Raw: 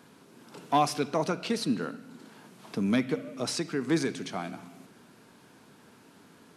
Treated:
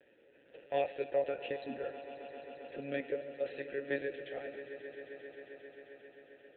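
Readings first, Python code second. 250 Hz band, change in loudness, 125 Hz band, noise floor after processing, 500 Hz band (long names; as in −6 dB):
−16.5 dB, −9.5 dB, −18.5 dB, −65 dBFS, −2.5 dB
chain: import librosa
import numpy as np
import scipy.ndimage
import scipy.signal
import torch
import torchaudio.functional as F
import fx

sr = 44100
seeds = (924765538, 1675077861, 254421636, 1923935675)

y = fx.lpc_monotone(x, sr, seeds[0], pitch_hz=140.0, order=16)
y = fx.vowel_filter(y, sr, vowel='e')
y = fx.echo_swell(y, sr, ms=133, loudest=5, wet_db=-17.0)
y = F.gain(torch.from_numpy(y), 5.0).numpy()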